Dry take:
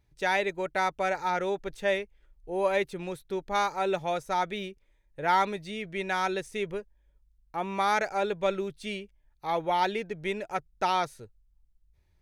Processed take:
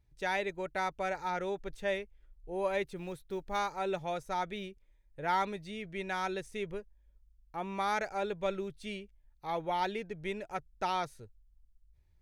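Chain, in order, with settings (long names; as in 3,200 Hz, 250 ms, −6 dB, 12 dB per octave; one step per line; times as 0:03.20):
0:02.96–0:03.61: one scale factor per block 7 bits
low-shelf EQ 120 Hz +8.5 dB
level −6.5 dB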